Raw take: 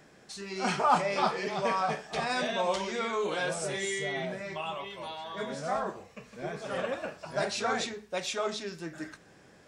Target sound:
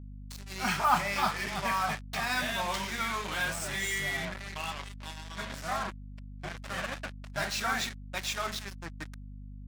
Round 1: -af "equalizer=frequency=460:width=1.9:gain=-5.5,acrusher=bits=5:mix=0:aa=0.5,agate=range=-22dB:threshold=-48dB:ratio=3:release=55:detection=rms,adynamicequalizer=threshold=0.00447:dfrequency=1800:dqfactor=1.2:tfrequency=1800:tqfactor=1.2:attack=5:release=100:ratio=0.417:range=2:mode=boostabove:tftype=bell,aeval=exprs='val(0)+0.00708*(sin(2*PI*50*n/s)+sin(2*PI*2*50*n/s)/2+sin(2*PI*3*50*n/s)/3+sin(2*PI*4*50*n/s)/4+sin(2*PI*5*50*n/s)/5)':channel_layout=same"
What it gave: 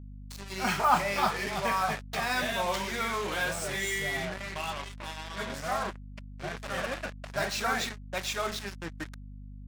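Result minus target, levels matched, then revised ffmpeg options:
500 Hz band +4.5 dB
-af "equalizer=frequency=460:width=1.9:gain=-16,acrusher=bits=5:mix=0:aa=0.5,agate=range=-22dB:threshold=-48dB:ratio=3:release=55:detection=rms,adynamicequalizer=threshold=0.00447:dfrequency=1800:dqfactor=1.2:tfrequency=1800:tqfactor=1.2:attack=5:release=100:ratio=0.417:range=2:mode=boostabove:tftype=bell,aeval=exprs='val(0)+0.00708*(sin(2*PI*50*n/s)+sin(2*PI*2*50*n/s)/2+sin(2*PI*3*50*n/s)/3+sin(2*PI*4*50*n/s)/4+sin(2*PI*5*50*n/s)/5)':channel_layout=same"

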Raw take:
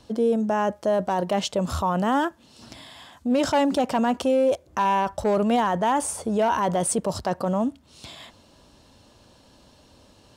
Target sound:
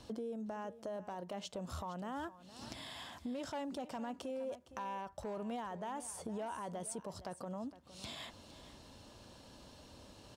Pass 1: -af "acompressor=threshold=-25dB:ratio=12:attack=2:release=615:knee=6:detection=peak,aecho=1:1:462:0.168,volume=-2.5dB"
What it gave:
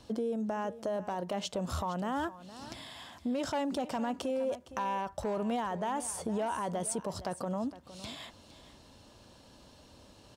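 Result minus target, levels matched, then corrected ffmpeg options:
downward compressor: peak gain reduction −8.5 dB
-af "acompressor=threshold=-34.5dB:ratio=12:attack=2:release=615:knee=6:detection=peak,aecho=1:1:462:0.168,volume=-2.5dB"

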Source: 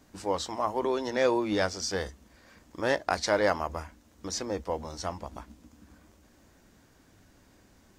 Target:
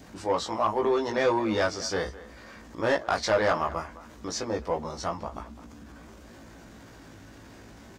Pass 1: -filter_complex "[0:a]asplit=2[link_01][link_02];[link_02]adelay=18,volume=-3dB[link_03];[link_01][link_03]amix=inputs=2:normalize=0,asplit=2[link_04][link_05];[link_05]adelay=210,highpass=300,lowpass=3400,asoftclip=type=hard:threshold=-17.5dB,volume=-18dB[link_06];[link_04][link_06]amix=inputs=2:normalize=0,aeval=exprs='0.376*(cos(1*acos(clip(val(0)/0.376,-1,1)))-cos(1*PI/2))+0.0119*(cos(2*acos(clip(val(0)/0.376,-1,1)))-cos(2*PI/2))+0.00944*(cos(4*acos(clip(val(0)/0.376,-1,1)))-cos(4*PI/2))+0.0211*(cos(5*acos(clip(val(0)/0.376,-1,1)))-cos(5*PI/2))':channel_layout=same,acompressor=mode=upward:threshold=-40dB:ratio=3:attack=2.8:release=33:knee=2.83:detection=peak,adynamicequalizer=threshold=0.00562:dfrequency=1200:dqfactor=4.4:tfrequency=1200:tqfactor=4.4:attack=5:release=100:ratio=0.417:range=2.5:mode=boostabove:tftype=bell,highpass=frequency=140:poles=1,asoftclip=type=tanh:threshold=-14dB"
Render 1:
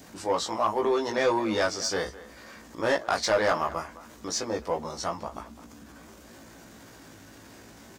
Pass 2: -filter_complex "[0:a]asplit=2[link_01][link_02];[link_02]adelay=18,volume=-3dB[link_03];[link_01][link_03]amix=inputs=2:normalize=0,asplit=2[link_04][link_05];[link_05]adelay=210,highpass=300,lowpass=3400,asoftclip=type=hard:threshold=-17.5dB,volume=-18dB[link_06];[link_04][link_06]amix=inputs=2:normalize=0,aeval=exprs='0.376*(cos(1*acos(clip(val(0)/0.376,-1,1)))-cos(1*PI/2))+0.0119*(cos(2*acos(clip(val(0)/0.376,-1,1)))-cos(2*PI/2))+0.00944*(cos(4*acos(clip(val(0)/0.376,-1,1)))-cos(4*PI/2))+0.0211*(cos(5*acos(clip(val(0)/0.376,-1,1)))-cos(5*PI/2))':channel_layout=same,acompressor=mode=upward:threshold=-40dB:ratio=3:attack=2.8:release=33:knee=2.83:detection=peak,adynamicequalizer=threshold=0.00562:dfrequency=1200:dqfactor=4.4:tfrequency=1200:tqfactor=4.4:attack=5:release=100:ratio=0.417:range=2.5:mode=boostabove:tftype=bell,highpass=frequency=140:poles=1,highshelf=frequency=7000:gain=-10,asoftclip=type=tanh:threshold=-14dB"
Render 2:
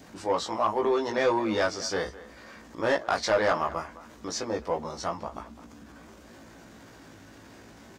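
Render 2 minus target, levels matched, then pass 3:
125 Hz band −3.5 dB
-filter_complex "[0:a]asplit=2[link_01][link_02];[link_02]adelay=18,volume=-3dB[link_03];[link_01][link_03]amix=inputs=2:normalize=0,asplit=2[link_04][link_05];[link_05]adelay=210,highpass=300,lowpass=3400,asoftclip=type=hard:threshold=-17.5dB,volume=-18dB[link_06];[link_04][link_06]amix=inputs=2:normalize=0,aeval=exprs='0.376*(cos(1*acos(clip(val(0)/0.376,-1,1)))-cos(1*PI/2))+0.0119*(cos(2*acos(clip(val(0)/0.376,-1,1)))-cos(2*PI/2))+0.00944*(cos(4*acos(clip(val(0)/0.376,-1,1)))-cos(4*PI/2))+0.0211*(cos(5*acos(clip(val(0)/0.376,-1,1)))-cos(5*PI/2))':channel_layout=same,acompressor=mode=upward:threshold=-40dB:ratio=3:attack=2.8:release=33:knee=2.83:detection=peak,adynamicequalizer=threshold=0.00562:dfrequency=1200:dqfactor=4.4:tfrequency=1200:tqfactor=4.4:attack=5:release=100:ratio=0.417:range=2.5:mode=boostabove:tftype=bell,highpass=frequency=42:poles=1,highshelf=frequency=7000:gain=-10,asoftclip=type=tanh:threshold=-14dB"

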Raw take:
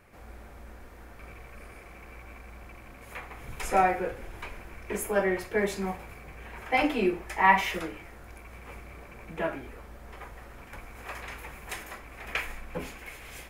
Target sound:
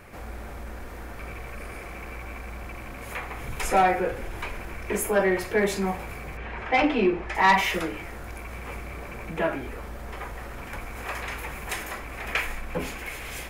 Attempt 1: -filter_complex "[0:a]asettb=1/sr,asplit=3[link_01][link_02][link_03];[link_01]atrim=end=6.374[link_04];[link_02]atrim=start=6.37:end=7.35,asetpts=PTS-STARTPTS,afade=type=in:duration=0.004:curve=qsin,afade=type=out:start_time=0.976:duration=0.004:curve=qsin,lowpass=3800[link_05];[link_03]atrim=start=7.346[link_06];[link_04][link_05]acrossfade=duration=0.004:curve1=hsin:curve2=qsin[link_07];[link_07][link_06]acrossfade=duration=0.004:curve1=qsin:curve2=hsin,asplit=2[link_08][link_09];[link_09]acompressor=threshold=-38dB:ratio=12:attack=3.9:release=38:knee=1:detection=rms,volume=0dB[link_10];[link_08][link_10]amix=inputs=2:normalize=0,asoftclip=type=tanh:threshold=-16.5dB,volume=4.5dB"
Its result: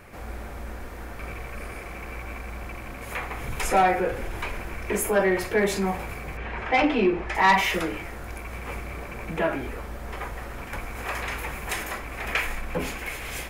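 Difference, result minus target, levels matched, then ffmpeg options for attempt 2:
downward compressor: peak gain reduction −7.5 dB
-filter_complex "[0:a]asettb=1/sr,asplit=3[link_01][link_02][link_03];[link_01]atrim=end=6.374[link_04];[link_02]atrim=start=6.37:end=7.35,asetpts=PTS-STARTPTS,afade=type=in:duration=0.004:curve=qsin,afade=type=out:start_time=0.976:duration=0.004:curve=qsin,lowpass=3800[link_05];[link_03]atrim=start=7.346[link_06];[link_04][link_05]acrossfade=duration=0.004:curve1=hsin:curve2=qsin[link_07];[link_07][link_06]acrossfade=duration=0.004:curve1=qsin:curve2=hsin,asplit=2[link_08][link_09];[link_09]acompressor=threshold=-46dB:ratio=12:attack=3.9:release=38:knee=1:detection=rms,volume=0dB[link_10];[link_08][link_10]amix=inputs=2:normalize=0,asoftclip=type=tanh:threshold=-16.5dB,volume=4.5dB"

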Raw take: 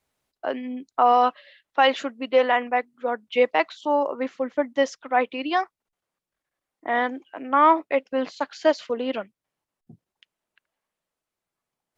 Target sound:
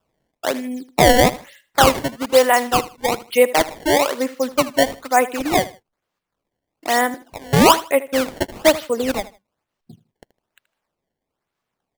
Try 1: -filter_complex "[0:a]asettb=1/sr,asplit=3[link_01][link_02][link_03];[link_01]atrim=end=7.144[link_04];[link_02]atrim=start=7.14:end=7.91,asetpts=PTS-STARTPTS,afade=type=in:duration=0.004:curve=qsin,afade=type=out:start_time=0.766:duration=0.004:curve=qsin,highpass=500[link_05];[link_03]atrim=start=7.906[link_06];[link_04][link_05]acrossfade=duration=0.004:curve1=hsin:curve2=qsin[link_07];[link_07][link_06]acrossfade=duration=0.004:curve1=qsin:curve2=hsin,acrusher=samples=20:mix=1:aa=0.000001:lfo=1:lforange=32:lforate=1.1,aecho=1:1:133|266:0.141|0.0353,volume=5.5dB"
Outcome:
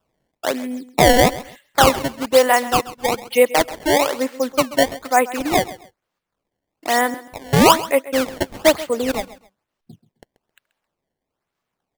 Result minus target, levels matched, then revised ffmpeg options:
echo 55 ms late
-filter_complex "[0:a]asettb=1/sr,asplit=3[link_01][link_02][link_03];[link_01]atrim=end=7.144[link_04];[link_02]atrim=start=7.14:end=7.91,asetpts=PTS-STARTPTS,afade=type=in:duration=0.004:curve=qsin,afade=type=out:start_time=0.766:duration=0.004:curve=qsin,highpass=500[link_05];[link_03]atrim=start=7.906[link_06];[link_04][link_05]acrossfade=duration=0.004:curve1=hsin:curve2=qsin[link_07];[link_07][link_06]acrossfade=duration=0.004:curve1=qsin:curve2=hsin,acrusher=samples=20:mix=1:aa=0.000001:lfo=1:lforange=32:lforate=1.1,aecho=1:1:78|156:0.141|0.0353,volume=5.5dB"

